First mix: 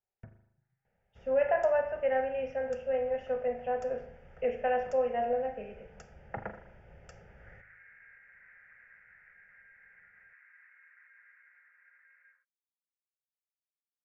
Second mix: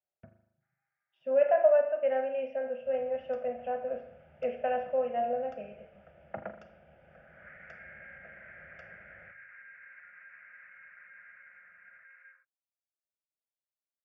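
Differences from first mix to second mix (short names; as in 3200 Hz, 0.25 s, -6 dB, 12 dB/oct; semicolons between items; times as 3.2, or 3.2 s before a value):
first sound: entry +1.70 s; second sound +10.5 dB; master: add speaker cabinet 110–3800 Hz, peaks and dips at 120 Hz -8 dB, 430 Hz -9 dB, 620 Hz +8 dB, 890 Hz -8 dB, 1900 Hz -7 dB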